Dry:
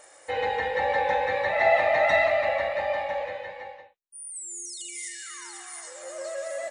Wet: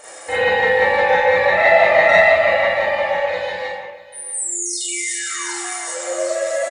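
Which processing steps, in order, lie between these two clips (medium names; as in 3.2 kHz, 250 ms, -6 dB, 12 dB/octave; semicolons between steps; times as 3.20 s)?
3.29–3.71 s: resonant high shelf 3.2 kHz +6.5 dB, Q 1.5; in parallel at +2 dB: compression, threshold -38 dBFS, peak gain reduction 20.5 dB; on the sum: delay 643 ms -18.5 dB; Schroeder reverb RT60 0.38 s, combs from 33 ms, DRR -7 dB; trim +1 dB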